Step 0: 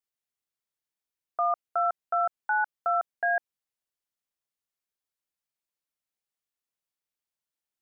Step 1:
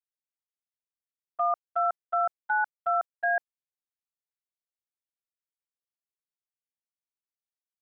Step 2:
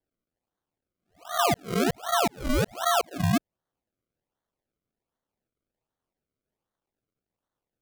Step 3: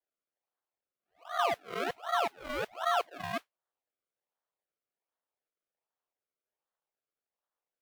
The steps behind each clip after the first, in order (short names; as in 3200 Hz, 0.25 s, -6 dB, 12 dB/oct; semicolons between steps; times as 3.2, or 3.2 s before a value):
gate -30 dBFS, range -17 dB
spectral swells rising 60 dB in 0.34 s; in parallel at -1 dB: compressor, threshold -33 dBFS, peak gain reduction 10 dB; on the sum: decimation with a swept rate 34×, swing 100% 1.3 Hz
modulation noise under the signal 16 dB; vibrato 3.8 Hz 29 cents; three-band isolator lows -19 dB, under 450 Hz, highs -16 dB, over 3600 Hz; gain -4 dB